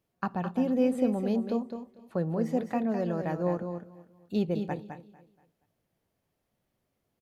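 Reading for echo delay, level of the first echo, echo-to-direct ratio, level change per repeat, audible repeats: 209 ms, −7.5 dB, −7.0 dB, repeats not evenly spaced, 3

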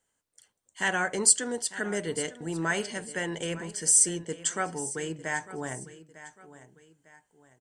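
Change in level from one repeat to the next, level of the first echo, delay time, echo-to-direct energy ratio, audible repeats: −8.5 dB, −16.0 dB, 901 ms, −15.5 dB, 2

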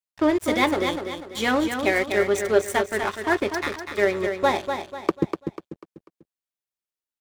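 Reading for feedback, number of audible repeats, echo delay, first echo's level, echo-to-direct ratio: 38%, 4, 246 ms, −7.0 dB, −6.5 dB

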